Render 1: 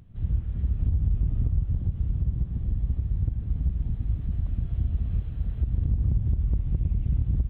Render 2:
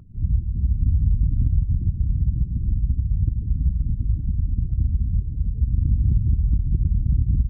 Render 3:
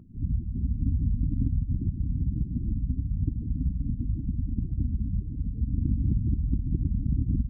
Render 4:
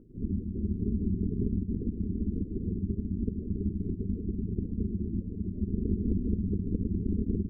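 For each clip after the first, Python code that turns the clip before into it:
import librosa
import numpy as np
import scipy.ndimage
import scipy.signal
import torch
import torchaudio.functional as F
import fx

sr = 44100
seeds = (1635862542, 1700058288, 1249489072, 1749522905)

y1 = fx.spec_gate(x, sr, threshold_db=-30, keep='strong')
y1 = F.gain(torch.from_numpy(y1), 5.0).numpy()
y2 = fx.small_body(y1, sr, hz=(270.0,), ring_ms=25, db=16)
y2 = F.gain(torch.from_numpy(y2), -8.5).numpy()
y3 = y2 + 10.0 ** (-16.5 / 20.0) * np.pad(y2, (int(110 * sr / 1000.0), 0))[:len(y2)]
y3 = y3 * np.sin(2.0 * np.pi * 140.0 * np.arange(len(y3)) / sr)
y3 = F.gain(torch.from_numpy(y3), -1.0).numpy()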